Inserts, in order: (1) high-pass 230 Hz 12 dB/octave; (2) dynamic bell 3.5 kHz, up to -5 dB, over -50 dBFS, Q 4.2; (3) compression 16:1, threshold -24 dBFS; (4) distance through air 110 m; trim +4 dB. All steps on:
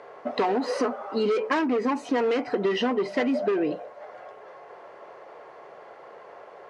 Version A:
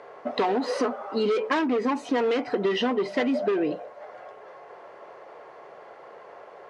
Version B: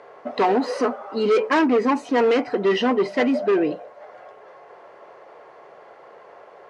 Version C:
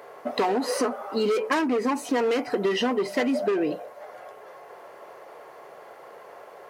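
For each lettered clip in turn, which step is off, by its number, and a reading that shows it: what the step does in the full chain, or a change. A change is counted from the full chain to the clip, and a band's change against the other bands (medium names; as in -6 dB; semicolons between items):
2, 4 kHz band +1.5 dB; 3, mean gain reduction 2.0 dB; 4, 4 kHz band +2.5 dB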